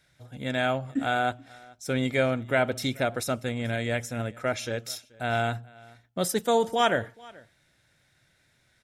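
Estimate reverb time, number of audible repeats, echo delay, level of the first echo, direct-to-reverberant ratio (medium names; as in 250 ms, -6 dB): no reverb, 1, 432 ms, -24.0 dB, no reverb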